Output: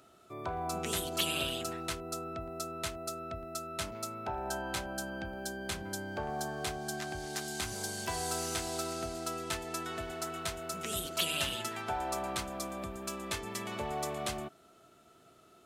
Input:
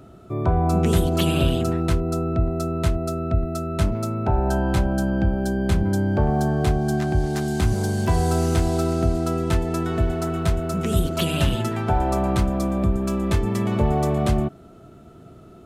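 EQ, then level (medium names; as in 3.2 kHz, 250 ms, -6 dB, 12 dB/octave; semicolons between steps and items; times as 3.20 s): tilt EQ +4 dB/octave; peaking EQ 160 Hz -3.5 dB 2.1 oct; treble shelf 9.5 kHz -11 dB; -9.0 dB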